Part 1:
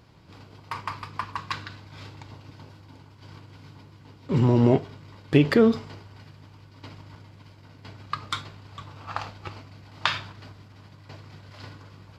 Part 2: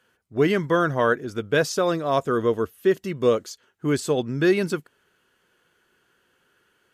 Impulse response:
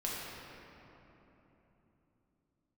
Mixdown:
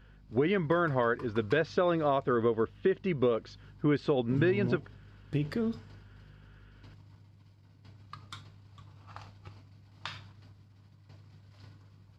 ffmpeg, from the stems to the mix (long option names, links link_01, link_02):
-filter_complex "[0:a]bass=frequency=250:gain=9,treble=frequency=4000:gain=4,volume=-17dB[link_01];[1:a]lowpass=frequency=3500:width=0.5412,lowpass=frequency=3500:width=1.3066,alimiter=limit=-13.5dB:level=0:latency=1:release=386,aeval=exprs='val(0)+0.00141*(sin(2*PI*50*n/s)+sin(2*PI*2*50*n/s)/2+sin(2*PI*3*50*n/s)/3+sin(2*PI*4*50*n/s)/4+sin(2*PI*5*50*n/s)/5)':channel_layout=same,volume=1dB[link_02];[link_01][link_02]amix=inputs=2:normalize=0,acompressor=threshold=-24dB:ratio=4"